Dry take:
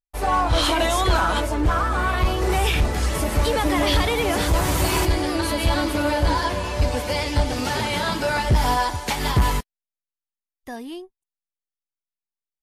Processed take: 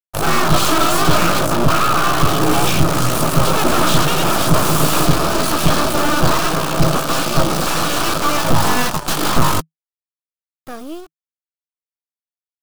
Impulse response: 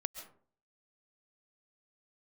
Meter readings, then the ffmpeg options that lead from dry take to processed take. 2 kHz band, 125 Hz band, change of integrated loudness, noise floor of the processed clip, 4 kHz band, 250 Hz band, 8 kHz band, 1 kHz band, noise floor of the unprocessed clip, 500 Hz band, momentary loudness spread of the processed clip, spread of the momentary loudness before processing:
+4.5 dB, +4.5 dB, +5.5 dB, below −85 dBFS, +6.0 dB, +6.5 dB, +9.5 dB, +6.0 dB, below −85 dBFS, +5.0 dB, 4 LU, 5 LU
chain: -af "acrusher=bits=5:dc=4:mix=0:aa=0.000001,aeval=exprs='abs(val(0))':channel_layout=same,equalizer=frequency=160:width_type=o:width=0.33:gain=11,equalizer=frequency=315:width_type=o:width=0.33:gain=6,equalizer=frequency=630:width_type=o:width=0.33:gain=4,equalizer=frequency=1250:width_type=o:width=0.33:gain=9,equalizer=frequency=2000:width_type=o:width=0.33:gain=-8,volume=5.5dB"

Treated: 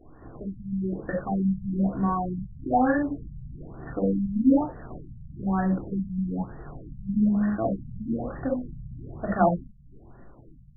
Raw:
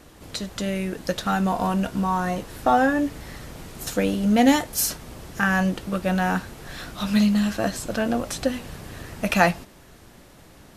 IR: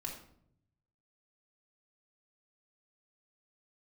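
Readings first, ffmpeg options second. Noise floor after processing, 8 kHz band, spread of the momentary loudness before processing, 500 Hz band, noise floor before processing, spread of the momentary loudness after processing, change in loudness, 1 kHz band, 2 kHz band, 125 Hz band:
−50 dBFS, below −40 dB, 18 LU, −4.0 dB, −50 dBFS, 19 LU, −3.5 dB, −5.0 dB, −13.0 dB, −1.5 dB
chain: -filter_complex "[1:a]atrim=start_sample=2205,afade=type=out:start_time=0.14:duration=0.01,atrim=end_sample=6615[link_01];[0:a][link_01]afir=irnorm=-1:irlink=0,afftfilt=real='re*lt(b*sr/1024,200*pow(2000/200,0.5+0.5*sin(2*PI*1.1*pts/sr)))':imag='im*lt(b*sr/1024,200*pow(2000/200,0.5+0.5*sin(2*PI*1.1*pts/sr)))':win_size=1024:overlap=0.75,volume=-1dB"

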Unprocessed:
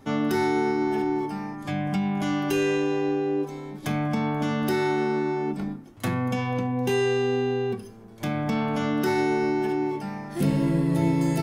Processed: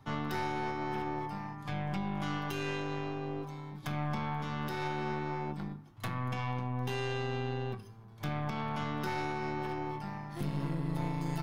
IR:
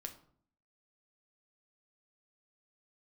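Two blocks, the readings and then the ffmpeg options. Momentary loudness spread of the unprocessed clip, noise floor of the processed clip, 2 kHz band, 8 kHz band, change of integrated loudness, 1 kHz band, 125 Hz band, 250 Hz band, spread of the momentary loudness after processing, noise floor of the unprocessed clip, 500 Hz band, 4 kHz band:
9 LU, −51 dBFS, −8.0 dB, −12.5 dB, −10.5 dB, −6.5 dB, −6.5 dB, −13.5 dB, 6 LU, −45 dBFS, −14.0 dB, −7.5 dB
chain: -filter_complex "[0:a]equalizer=frequency=125:width_type=o:width=1:gain=12,equalizer=frequency=250:width_type=o:width=1:gain=-6,equalizer=frequency=500:width_type=o:width=1:gain=-6,equalizer=frequency=1000:width_type=o:width=1:gain=7,equalizer=frequency=4000:width_type=o:width=1:gain=4,equalizer=frequency=8000:width_type=o:width=1:gain=-5,acrossover=split=150|3000[link_01][link_02][link_03];[link_01]acompressor=threshold=-35dB:ratio=6[link_04];[link_04][link_02][link_03]amix=inputs=3:normalize=0,alimiter=limit=-16.5dB:level=0:latency=1:release=238,aeval=exprs='(tanh(11.2*val(0)+0.7)-tanh(0.7))/11.2':channel_layout=same,volume=-5.5dB"

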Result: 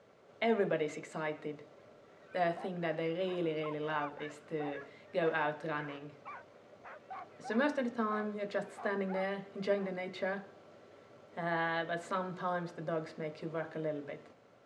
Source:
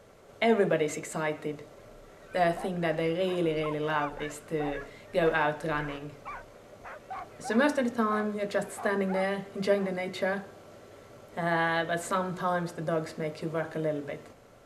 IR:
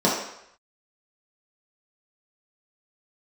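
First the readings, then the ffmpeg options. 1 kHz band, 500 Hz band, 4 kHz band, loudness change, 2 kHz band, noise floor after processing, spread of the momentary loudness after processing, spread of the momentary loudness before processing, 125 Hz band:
−6.5 dB, −6.5 dB, −7.5 dB, −6.5 dB, −6.5 dB, −60 dBFS, 15 LU, 15 LU, −8.0 dB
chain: -af "highpass=130,lowpass=4900,volume=-6.5dB"

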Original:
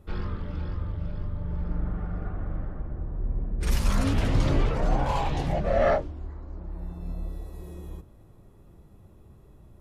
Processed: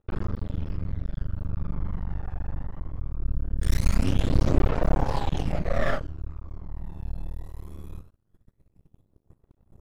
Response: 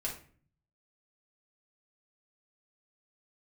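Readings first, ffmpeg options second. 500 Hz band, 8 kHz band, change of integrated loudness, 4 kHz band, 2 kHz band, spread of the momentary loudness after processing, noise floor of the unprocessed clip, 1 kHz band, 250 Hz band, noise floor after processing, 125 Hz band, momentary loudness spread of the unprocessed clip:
−4.0 dB, −1.5 dB, −0.5 dB, −1.5 dB, −0.5 dB, 16 LU, −53 dBFS, −3.5 dB, +0.5 dB, −70 dBFS, +0.5 dB, 16 LU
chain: -af "aeval=exprs='max(val(0),0)':channel_layout=same,agate=range=-18dB:threshold=-50dB:ratio=16:detection=peak,aphaser=in_gain=1:out_gain=1:delay=1.2:decay=0.48:speed=0.21:type=triangular"

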